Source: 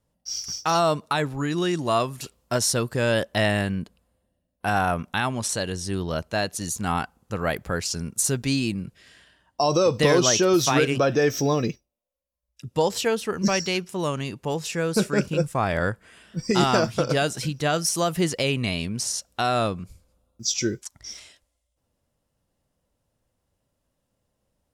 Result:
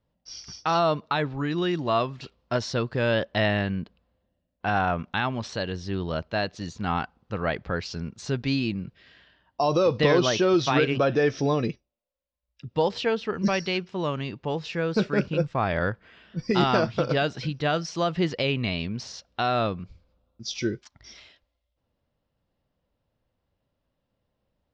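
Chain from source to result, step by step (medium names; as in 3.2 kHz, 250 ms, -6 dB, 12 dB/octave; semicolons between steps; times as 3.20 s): inverse Chebyshev low-pass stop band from 10 kHz, stop band 50 dB; trim -1.5 dB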